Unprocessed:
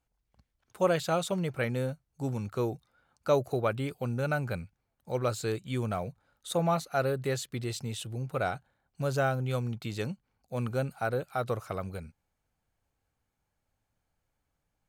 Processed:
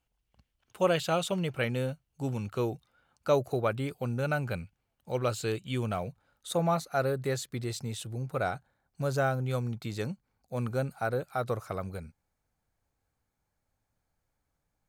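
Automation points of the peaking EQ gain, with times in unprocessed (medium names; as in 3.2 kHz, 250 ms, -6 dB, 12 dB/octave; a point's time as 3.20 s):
peaking EQ 2.9 kHz 0.41 oct
2.62 s +8 dB
3.86 s -1.5 dB
4.60 s +6.5 dB
5.92 s +6.5 dB
6.79 s -5 dB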